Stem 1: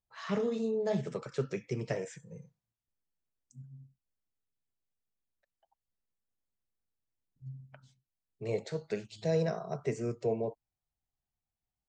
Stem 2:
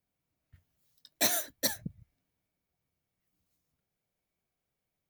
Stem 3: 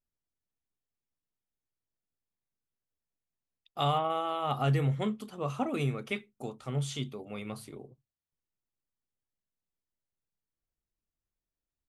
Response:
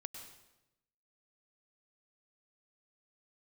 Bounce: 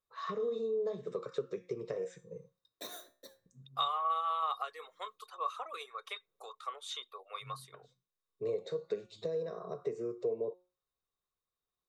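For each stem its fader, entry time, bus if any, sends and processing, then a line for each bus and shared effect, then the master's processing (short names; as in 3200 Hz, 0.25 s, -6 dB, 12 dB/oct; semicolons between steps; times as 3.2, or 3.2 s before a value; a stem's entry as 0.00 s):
-2.0 dB, 0.00 s, bus A, no send, dry
-15.0 dB, 1.60 s, bus A, no send, de-hum 66.68 Hz, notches 40; AGC gain up to 14 dB; auto duck -23 dB, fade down 0.55 s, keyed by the first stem
-4.5 dB, 0.00 s, no bus, no send, reverb removal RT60 0.55 s; compressor 6:1, threshold -33 dBFS, peak gain reduction 9 dB; HPF 800 Hz 24 dB/oct
bus A: 0.0 dB, resonator 180 Hz, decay 0.33 s, harmonics all, mix 60%; compressor 12:1, threshold -45 dBFS, peak gain reduction 12 dB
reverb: off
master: small resonant body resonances 460/1100/3700 Hz, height 17 dB, ringing for 20 ms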